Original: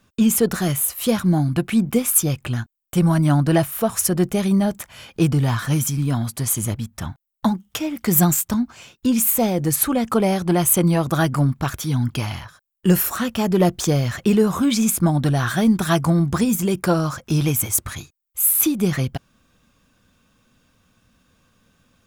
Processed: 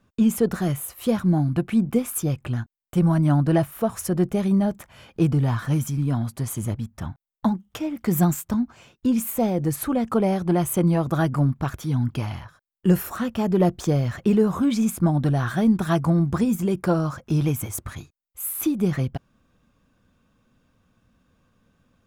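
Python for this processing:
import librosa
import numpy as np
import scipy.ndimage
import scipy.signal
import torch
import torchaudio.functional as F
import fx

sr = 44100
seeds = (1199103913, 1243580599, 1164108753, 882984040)

y = fx.high_shelf(x, sr, hz=2000.0, db=-10.5)
y = F.gain(torch.from_numpy(y), -2.0).numpy()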